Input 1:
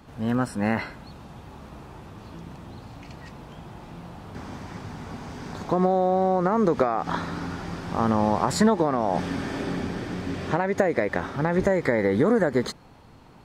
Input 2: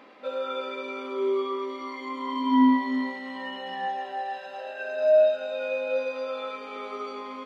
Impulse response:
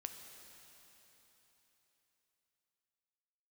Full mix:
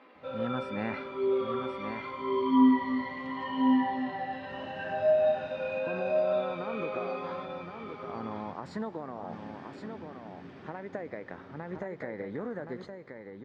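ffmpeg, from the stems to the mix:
-filter_complex "[0:a]adelay=150,volume=-12dB,afade=t=out:st=5.45:d=0.38:silence=0.473151,asplit=3[a][b][c];[b]volume=-7dB[d];[c]volume=-4.5dB[e];[1:a]flanger=delay=15.5:depth=7.1:speed=0.77,volume=-1.5dB,asplit=2[f][g];[g]volume=-3.5dB[h];[2:a]atrim=start_sample=2205[i];[d][i]afir=irnorm=-1:irlink=0[j];[e][h]amix=inputs=2:normalize=0,aecho=0:1:1071:1[k];[a][f][j][k]amix=inputs=4:normalize=0,highpass=100,lowpass=3.4k"

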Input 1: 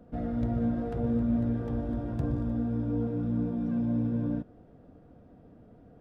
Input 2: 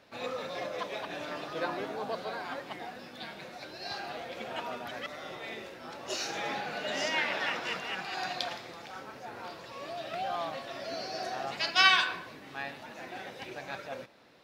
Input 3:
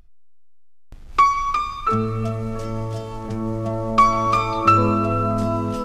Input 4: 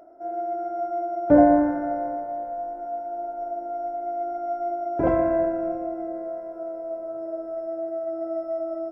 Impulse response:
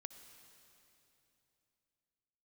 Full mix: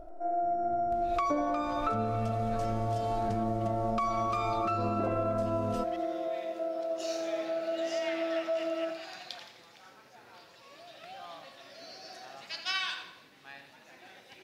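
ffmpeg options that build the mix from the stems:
-filter_complex "[0:a]adelay=300,volume=-17dB[a];[1:a]highshelf=f=2k:g=8,adelay=900,volume=-13.5dB,asplit=2[b][c];[c]volume=-11dB[d];[2:a]alimiter=limit=-13.5dB:level=0:latency=1:release=79,volume=-1dB,asplit=2[e][f];[f]volume=-21dB[g];[3:a]highpass=230,volume=0dB,asplit=2[h][i];[i]volume=-7dB[j];[d][g][j]amix=inputs=3:normalize=0,aecho=0:1:86|172|258|344|430|516:1|0.42|0.176|0.0741|0.0311|0.0131[k];[a][b][e][h][k]amix=inputs=5:normalize=0,acompressor=threshold=-27dB:ratio=10"

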